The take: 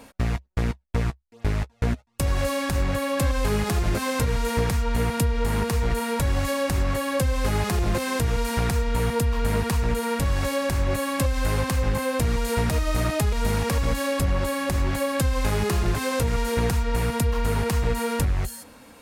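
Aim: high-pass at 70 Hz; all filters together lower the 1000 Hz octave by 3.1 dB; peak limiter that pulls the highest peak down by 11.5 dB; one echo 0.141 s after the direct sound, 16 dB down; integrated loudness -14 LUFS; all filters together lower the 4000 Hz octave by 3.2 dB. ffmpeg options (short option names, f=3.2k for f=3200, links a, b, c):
-af "highpass=70,equalizer=f=1k:t=o:g=-3.5,equalizer=f=4k:t=o:g=-4,alimiter=limit=-23.5dB:level=0:latency=1,aecho=1:1:141:0.158,volume=18dB"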